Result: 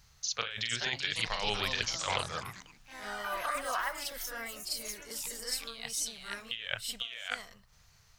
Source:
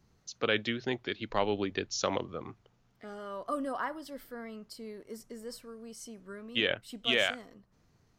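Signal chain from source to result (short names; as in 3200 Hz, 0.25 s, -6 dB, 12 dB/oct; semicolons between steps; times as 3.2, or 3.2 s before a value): passive tone stack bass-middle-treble 10-0-10; reverse echo 44 ms -5.5 dB; negative-ratio compressor -44 dBFS, ratio -1; echoes that change speed 0.506 s, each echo +4 st, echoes 3, each echo -6 dB; gain +8.5 dB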